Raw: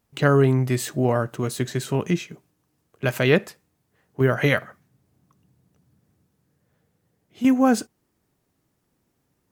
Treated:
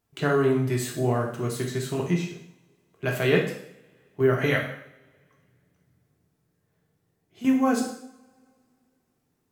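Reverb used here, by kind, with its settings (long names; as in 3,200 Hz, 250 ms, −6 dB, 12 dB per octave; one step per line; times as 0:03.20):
coupled-rooms reverb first 0.66 s, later 2.5 s, from −27 dB, DRR −1 dB
level −6.5 dB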